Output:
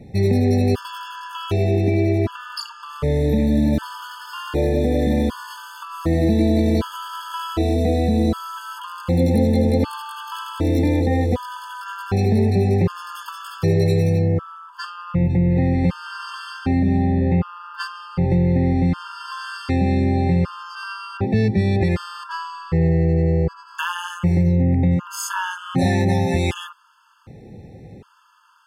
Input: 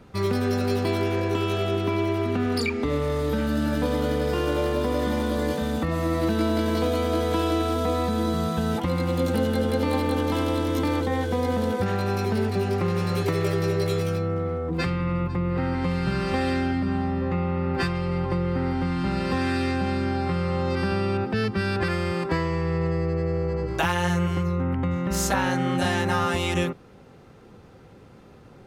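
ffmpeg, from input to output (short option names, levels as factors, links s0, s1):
-filter_complex "[0:a]equalizer=f=120:t=o:w=2.4:g=7.5,asplit=2[s0][s1];[s1]asoftclip=type=tanh:threshold=0.0631,volume=0.355[s2];[s0][s2]amix=inputs=2:normalize=0,afftfilt=real='re*gt(sin(2*PI*0.66*pts/sr)*(1-2*mod(floor(b*sr/1024/880),2)),0)':imag='im*gt(sin(2*PI*0.66*pts/sr)*(1-2*mod(floor(b*sr/1024/880),2)),0)':win_size=1024:overlap=0.75,volume=1.19"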